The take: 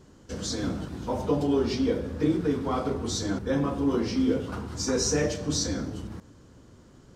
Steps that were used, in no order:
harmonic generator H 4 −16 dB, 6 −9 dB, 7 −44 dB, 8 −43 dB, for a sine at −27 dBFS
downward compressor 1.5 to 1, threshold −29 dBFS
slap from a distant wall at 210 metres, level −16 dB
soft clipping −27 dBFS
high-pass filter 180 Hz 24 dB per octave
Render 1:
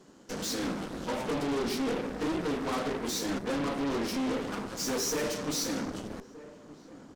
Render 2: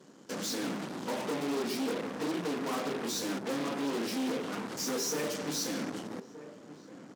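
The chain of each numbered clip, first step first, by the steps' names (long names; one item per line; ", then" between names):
high-pass filter, then soft clipping, then downward compressor, then harmonic generator, then slap from a distant wall
downward compressor, then harmonic generator, then slap from a distant wall, then soft clipping, then high-pass filter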